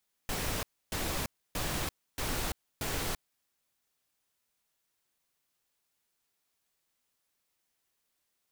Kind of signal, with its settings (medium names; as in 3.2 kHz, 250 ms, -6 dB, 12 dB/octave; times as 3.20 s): noise bursts pink, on 0.34 s, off 0.29 s, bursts 5, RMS -33.5 dBFS